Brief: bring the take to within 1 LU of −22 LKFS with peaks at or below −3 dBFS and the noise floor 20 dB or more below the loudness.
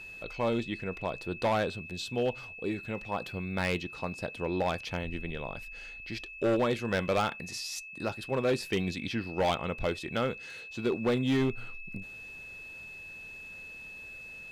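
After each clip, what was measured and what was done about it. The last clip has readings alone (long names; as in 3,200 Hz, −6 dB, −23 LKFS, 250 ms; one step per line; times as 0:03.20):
share of clipped samples 1.3%; peaks flattened at −22.0 dBFS; interfering tone 2,600 Hz; level of the tone −43 dBFS; integrated loudness −33.0 LKFS; sample peak −22.0 dBFS; target loudness −22.0 LKFS
→ clipped peaks rebuilt −22 dBFS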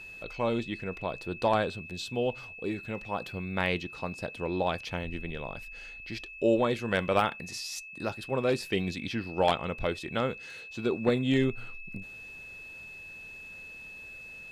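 share of clipped samples 0.0%; interfering tone 2,600 Hz; level of the tone −43 dBFS
→ notch filter 2,600 Hz, Q 30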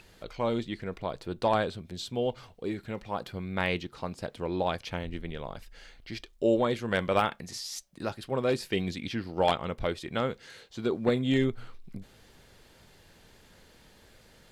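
interfering tone none found; integrated loudness −31.0 LKFS; sample peak −12.5 dBFS; target loudness −22.0 LKFS
→ level +9 dB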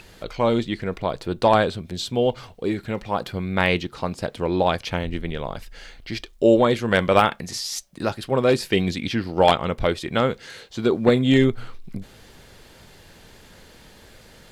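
integrated loudness −22.0 LKFS; sample peak −3.5 dBFS; background noise floor −49 dBFS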